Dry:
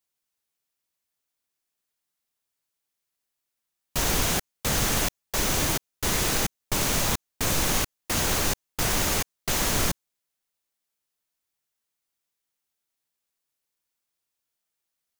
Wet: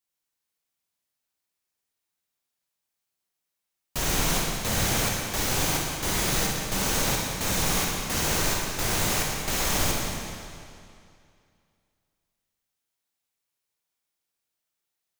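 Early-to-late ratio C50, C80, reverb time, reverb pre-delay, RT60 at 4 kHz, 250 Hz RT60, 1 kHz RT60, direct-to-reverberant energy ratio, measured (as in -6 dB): -0.5 dB, 1.5 dB, 2.4 s, 32 ms, 2.2 s, 2.4 s, 2.4 s, -1.5 dB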